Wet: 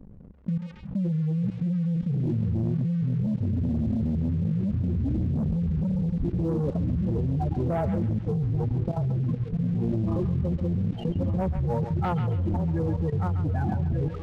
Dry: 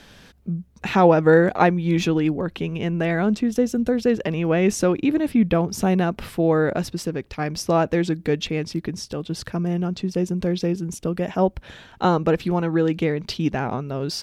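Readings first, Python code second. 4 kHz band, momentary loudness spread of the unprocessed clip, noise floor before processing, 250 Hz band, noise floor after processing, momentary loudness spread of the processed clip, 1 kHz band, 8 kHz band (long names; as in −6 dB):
below −20 dB, 10 LU, −50 dBFS, −5.5 dB, −38 dBFS, 1 LU, −12.0 dB, below −25 dB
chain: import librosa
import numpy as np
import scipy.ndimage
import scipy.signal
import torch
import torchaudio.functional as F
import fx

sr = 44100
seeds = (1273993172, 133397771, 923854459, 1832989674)

y = fx.low_shelf(x, sr, hz=250.0, db=5.0)
y = fx.echo_pitch(y, sr, ms=748, semitones=-6, count=3, db_per_echo=-3.0)
y = fx.filter_sweep_lowpass(y, sr, from_hz=230.0, to_hz=2100.0, start_s=5.61, end_s=9.02, q=1.1)
y = fx.dynamic_eq(y, sr, hz=350.0, q=0.94, threshold_db=-30.0, ratio=4.0, max_db=-8)
y = fx.hum_notches(y, sr, base_hz=60, count=5)
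y = fx.spec_gate(y, sr, threshold_db=-10, keep='strong')
y = fx.echo_feedback(y, sr, ms=1177, feedback_pct=34, wet_db=-10.0)
y = fx.leveller(y, sr, passes=2)
y = fx.level_steps(y, sr, step_db=18)
y = fx.echo_banded(y, sr, ms=137, feedback_pct=42, hz=2800.0, wet_db=-5)
y = fx.noise_reduce_blind(y, sr, reduce_db=7)
y = fx.env_flatten(y, sr, amount_pct=50)
y = y * librosa.db_to_amplitude(-8.0)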